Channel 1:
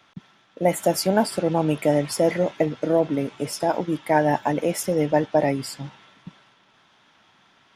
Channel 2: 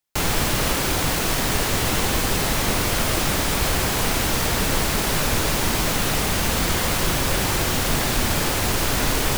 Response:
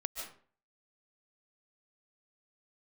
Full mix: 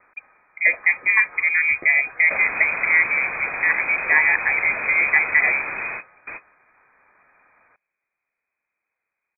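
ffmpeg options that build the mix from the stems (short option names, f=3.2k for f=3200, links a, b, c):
-filter_complex "[0:a]volume=2dB,asplit=2[a][b];[1:a]adelay=2150,volume=-2.5dB,afade=t=out:st=5.56:d=0.68:silence=0.446684[c];[b]apad=whole_len=508105[d];[c][d]sidechaingate=range=-48dB:threshold=-43dB:ratio=16:detection=peak[e];[a][e]amix=inputs=2:normalize=0,highpass=f=79:w=0.5412,highpass=f=79:w=1.3066,lowpass=f=2.2k:t=q:w=0.5098,lowpass=f=2.2k:t=q:w=0.6013,lowpass=f=2.2k:t=q:w=0.9,lowpass=f=2.2k:t=q:w=2.563,afreqshift=-2600"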